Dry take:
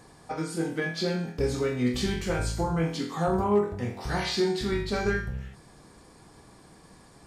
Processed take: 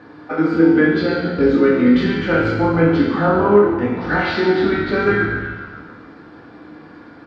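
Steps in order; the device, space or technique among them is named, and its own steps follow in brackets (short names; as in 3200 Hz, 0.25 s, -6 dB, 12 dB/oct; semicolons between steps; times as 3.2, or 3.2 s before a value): fifteen-band EQ 100 Hz +3 dB, 250 Hz +7 dB, 1600 Hz +5 dB; FDN reverb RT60 1.3 s, low-frequency decay 1×, high-frequency decay 0.85×, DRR -0.5 dB; frequency-shifting delay pedal into a guitar cabinet (frequency-shifting echo 0.141 s, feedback 57%, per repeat -75 Hz, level -12 dB; speaker cabinet 100–3700 Hz, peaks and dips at 130 Hz -8 dB, 330 Hz +5 dB, 530 Hz +4 dB, 1400 Hz +8 dB); gain +4.5 dB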